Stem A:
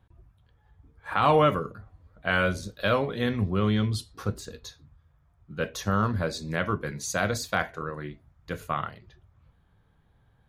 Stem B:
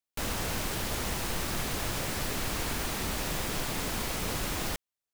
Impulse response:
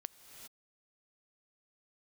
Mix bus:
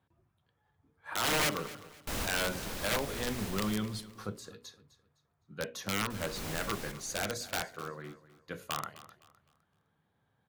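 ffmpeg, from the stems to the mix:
-filter_complex "[0:a]highpass=150,bandreject=frequency=60:width_type=h:width=6,bandreject=frequency=120:width_type=h:width=6,bandreject=frequency=180:width_type=h:width=6,bandreject=frequency=240:width_type=h:width=6,bandreject=frequency=300:width_type=h:width=6,bandreject=frequency=360:width_type=h:width=6,bandreject=frequency=420:width_type=h:width=6,bandreject=frequency=480:width_type=h:width=6,bandreject=frequency=540:width_type=h:width=6,aeval=exprs='(mod(7.08*val(0)+1,2)-1)/7.08':channel_layout=same,volume=-6.5dB,asplit=3[link_01][link_02][link_03];[link_02]volume=-17dB[link_04];[1:a]adelay=1900,volume=-1.5dB,asplit=3[link_05][link_06][link_07];[link_05]atrim=end=3.49,asetpts=PTS-STARTPTS,afade=type=out:start_time=3.486:duration=0.004:curve=hsin[link_08];[link_06]atrim=start=3.49:end=6.1,asetpts=PTS-STARTPTS,volume=0[link_09];[link_07]atrim=start=6.1,asetpts=PTS-STARTPTS,afade=type=in:duration=0.004:curve=hsin[link_10];[link_08][link_09][link_10]concat=n=3:v=0:a=1,asplit=2[link_11][link_12];[link_12]volume=-9dB[link_13];[link_03]apad=whole_len=310213[link_14];[link_11][link_14]sidechaincompress=threshold=-44dB:ratio=5:attack=16:release=580[link_15];[link_04][link_13]amix=inputs=2:normalize=0,aecho=0:1:256|512|768|1024:1|0.31|0.0961|0.0298[link_16];[link_01][link_15][link_16]amix=inputs=3:normalize=0"

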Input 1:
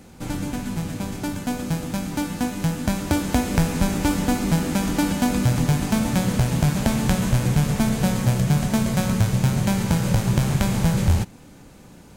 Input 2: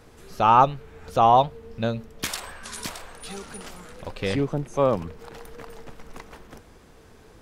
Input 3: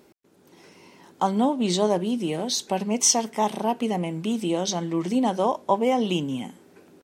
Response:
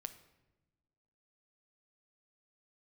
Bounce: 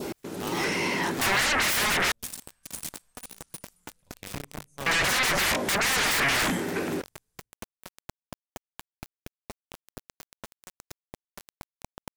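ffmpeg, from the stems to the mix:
-filter_complex "[0:a]acompressor=threshold=-24dB:ratio=12,adelay=1700,volume=-11dB[link_01];[1:a]firequalizer=gain_entry='entry(150,0);entry(340,-10);entry(1900,-3);entry(8600,15)':delay=0.05:min_phase=1,volume=-10dB,asplit=2[link_02][link_03];[link_03]volume=-14.5dB[link_04];[2:a]acompressor=threshold=-26dB:ratio=5,aeval=exprs='0.0708*sin(PI/2*10*val(0)/0.0708)':channel_layout=same,adynamicequalizer=threshold=0.00708:dfrequency=1900:dqfactor=1.7:tfrequency=1900:tqfactor=1.7:attack=5:release=100:ratio=0.375:range=3.5:mode=boostabove:tftype=bell,volume=-0.5dB,asplit=3[link_05][link_06][link_07];[link_05]atrim=end=2.12,asetpts=PTS-STARTPTS,afade=type=out:start_time=2.116:duration=0.004:curve=hsin[link_08];[link_06]atrim=start=2.12:end=4.86,asetpts=PTS-STARTPTS,volume=0[link_09];[link_07]atrim=start=4.86,asetpts=PTS-STARTPTS,afade=type=in:duration=0.004:curve=hsin[link_10];[link_08][link_09][link_10]concat=n=3:v=0:a=1[link_11];[link_01][link_02]amix=inputs=2:normalize=0,acrusher=bits=4:mix=0:aa=0.000001,alimiter=level_in=2dB:limit=-24dB:level=0:latency=1:release=184,volume=-2dB,volume=0dB[link_12];[3:a]atrim=start_sample=2205[link_13];[link_04][link_13]afir=irnorm=-1:irlink=0[link_14];[link_11][link_12][link_14]amix=inputs=3:normalize=0"

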